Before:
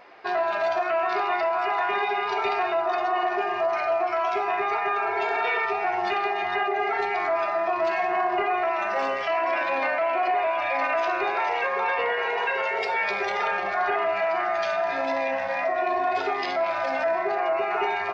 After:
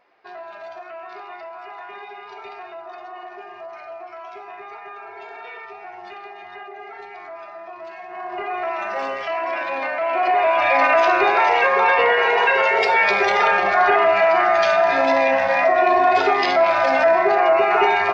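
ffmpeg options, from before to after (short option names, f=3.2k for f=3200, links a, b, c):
-af "volume=9dB,afade=t=in:st=8.08:d=0.61:silence=0.251189,afade=t=in:st=9.94:d=0.75:silence=0.354813"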